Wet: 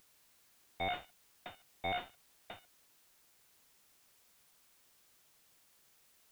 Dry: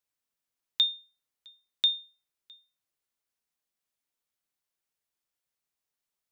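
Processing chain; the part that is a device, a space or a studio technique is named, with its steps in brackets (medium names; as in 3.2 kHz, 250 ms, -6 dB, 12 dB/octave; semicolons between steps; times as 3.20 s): army field radio (band-pass 310–3300 Hz; CVSD coder 16 kbps; white noise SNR 20 dB); trim +11 dB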